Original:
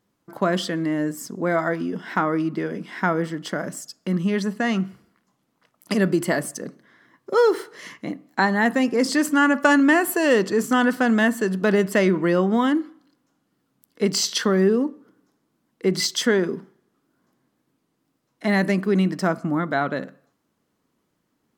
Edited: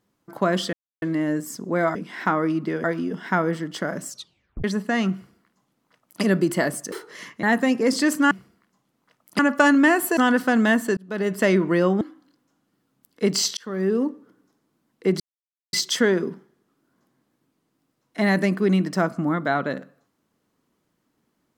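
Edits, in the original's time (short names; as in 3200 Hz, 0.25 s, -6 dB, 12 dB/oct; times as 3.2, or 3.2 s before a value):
0.73 insert silence 0.29 s
1.66–2.1 swap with 2.74–2.99
3.79 tape stop 0.56 s
4.85–5.93 copy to 9.44
6.63–7.56 cut
8.07–8.56 cut
10.22–10.7 cut
11.5–12 fade in
12.54–12.8 cut
14.36–14.86 fade in
15.99 insert silence 0.53 s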